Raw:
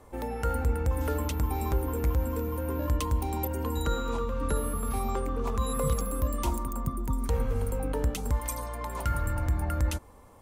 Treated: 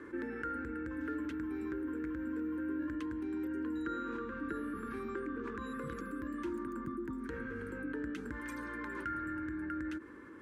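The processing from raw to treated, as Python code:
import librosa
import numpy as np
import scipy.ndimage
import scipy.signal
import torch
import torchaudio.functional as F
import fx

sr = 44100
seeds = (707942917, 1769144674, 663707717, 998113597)

y = fx.rider(x, sr, range_db=10, speed_s=0.5)
y = fx.double_bandpass(y, sr, hz=720.0, octaves=2.3)
y = fx.env_flatten(y, sr, amount_pct=50)
y = y * librosa.db_to_amplitude(2.0)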